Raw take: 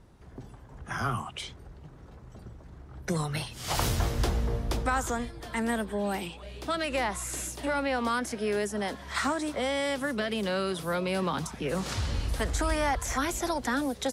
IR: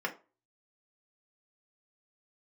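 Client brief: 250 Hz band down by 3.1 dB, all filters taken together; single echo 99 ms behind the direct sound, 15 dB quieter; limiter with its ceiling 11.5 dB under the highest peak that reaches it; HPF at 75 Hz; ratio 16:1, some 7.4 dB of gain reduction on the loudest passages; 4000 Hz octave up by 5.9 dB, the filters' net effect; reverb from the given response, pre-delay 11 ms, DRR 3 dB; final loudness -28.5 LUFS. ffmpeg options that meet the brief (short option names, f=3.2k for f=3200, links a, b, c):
-filter_complex "[0:a]highpass=75,equalizer=f=250:t=o:g=-4,equalizer=f=4k:t=o:g=7.5,acompressor=threshold=-32dB:ratio=16,alimiter=level_in=6.5dB:limit=-24dB:level=0:latency=1,volume=-6.5dB,aecho=1:1:99:0.178,asplit=2[a][b];[1:a]atrim=start_sample=2205,adelay=11[c];[b][c]afir=irnorm=-1:irlink=0,volume=-9dB[d];[a][d]amix=inputs=2:normalize=0,volume=9.5dB"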